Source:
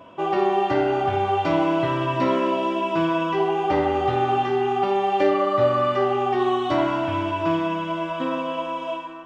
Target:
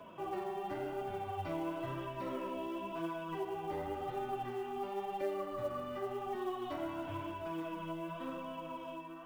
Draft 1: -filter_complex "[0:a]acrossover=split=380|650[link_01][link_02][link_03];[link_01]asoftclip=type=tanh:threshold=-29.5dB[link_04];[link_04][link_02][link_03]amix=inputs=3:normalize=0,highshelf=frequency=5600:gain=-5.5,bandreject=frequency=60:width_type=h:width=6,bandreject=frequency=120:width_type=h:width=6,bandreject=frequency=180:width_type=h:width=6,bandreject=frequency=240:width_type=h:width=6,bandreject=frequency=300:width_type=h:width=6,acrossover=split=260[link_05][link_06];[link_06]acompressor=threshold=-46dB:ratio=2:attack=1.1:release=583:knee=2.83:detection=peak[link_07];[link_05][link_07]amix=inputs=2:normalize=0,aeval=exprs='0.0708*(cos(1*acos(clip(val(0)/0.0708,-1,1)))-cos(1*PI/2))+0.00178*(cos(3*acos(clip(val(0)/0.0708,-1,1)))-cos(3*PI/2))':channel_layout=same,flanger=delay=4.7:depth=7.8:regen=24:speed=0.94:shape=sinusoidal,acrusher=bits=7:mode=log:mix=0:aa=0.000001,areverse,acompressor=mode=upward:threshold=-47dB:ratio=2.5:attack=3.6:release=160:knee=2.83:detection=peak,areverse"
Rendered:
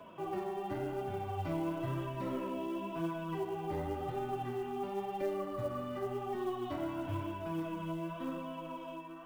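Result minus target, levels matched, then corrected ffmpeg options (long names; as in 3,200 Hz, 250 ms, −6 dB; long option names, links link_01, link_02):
soft clipping: distortion −6 dB
-filter_complex "[0:a]acrossover=split=380|650[link_01][link_02][link_03];[link_01]asoftclip=type=tanh:threshold=-39.5dB[link_04];[link_04][link_02][link_03]amix=inputs=3:normalize=0,highshelf=frequency=5600:gain=-5.5,bandreject=frequency=60:width_type=h:width=6,bandreject=frequency=120:width_type=h:width=6,bandreject=frequency=180:width_type=h:width=6,bandreject=frequency=240:width_type=h:width=6,bandreject=frequency=300:width_type=h:width=6,acrossover=split=260[link_05][link_06];[link_06]acompressor=threshold=-46dB:ratio=2:attack=1.1:release=583:knee=2.83:detection=peak[link_07];[link_05][link_07]amix=inputs=2:normalize=0,aeval=exprs='0.0708*(cos(1*acos(clip(val(0)/0.0708,-1,1)))-cos(1*PI/2))+0.00178*(cos(3*acos(clip(val(0)/0.0708,-1,1)))-cos(3*PI/2))':channel_layout=same,flanger=delay=4.7:depth=7.8:regen=24:speed=0.94:shape=sinusoidal,acrusher=bits=7:mode=log:mix=0:aa=0.000001,areverse,acompressor=mode=upward:threshold=-47dB:ratio=2.5:attack=3.6:release=160:knee=2.83:detection=peak,areverse"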